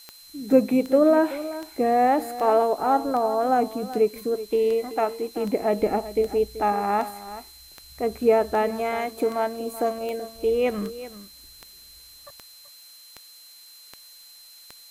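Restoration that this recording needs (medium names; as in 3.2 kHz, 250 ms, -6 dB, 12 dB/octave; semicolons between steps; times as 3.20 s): de-click; band-stop 4.1 kHz, Q 30; noise reduction 20 dB, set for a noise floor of -48 dBFS; inverse comb 381 ms -14.5 dB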